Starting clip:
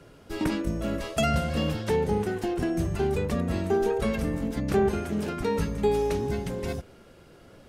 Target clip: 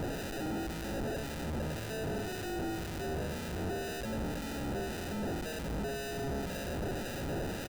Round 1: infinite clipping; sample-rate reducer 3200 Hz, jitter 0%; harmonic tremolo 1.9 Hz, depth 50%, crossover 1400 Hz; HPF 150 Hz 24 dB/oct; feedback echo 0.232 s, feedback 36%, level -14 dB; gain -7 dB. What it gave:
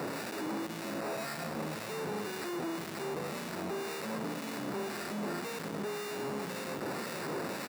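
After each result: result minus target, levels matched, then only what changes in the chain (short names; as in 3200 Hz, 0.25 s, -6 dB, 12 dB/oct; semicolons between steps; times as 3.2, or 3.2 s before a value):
125 Hz band -6.5 dB; sample-rate reducer: distortion -7 dB
remove: HPF 150 Hz 24 dB/oct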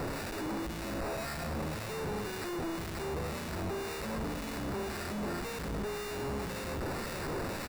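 sample-rate reducer: distortion -7 dB
change: sample-rate reducer 1100 Hz, jitter 0%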